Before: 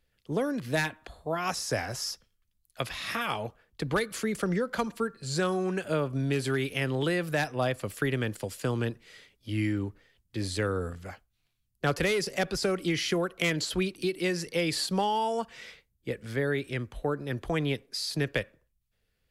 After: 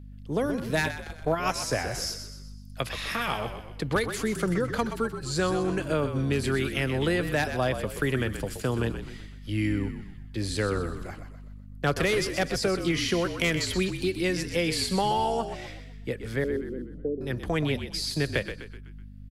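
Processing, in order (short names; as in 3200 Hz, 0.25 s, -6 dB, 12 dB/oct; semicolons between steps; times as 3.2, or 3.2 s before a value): 16.44–17.21 elliptic band-pass 190–500 Hz, stop band 50 dB; hum 50 Hz, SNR 14 dB; frequency-shifting echo 0.126 s, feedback 46%, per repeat -48 Hz, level -9 dB; 0.84–1.59 transient shaper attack +7 dB, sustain -5 dB; gain +1.5 dB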